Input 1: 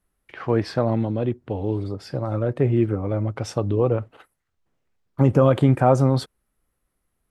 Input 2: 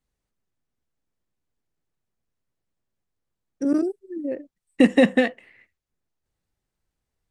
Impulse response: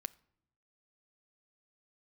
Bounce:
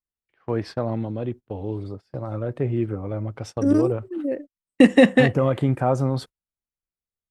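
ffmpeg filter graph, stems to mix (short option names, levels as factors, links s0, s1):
-filter_complex "[0:a]volume=0.596[s0];[1:a]volume=1.33[s1];[s0][s1]amix=inputs=2:normalize=0,agate=range=0.0708:threshold=0.0178:ratio=16:detection=peak"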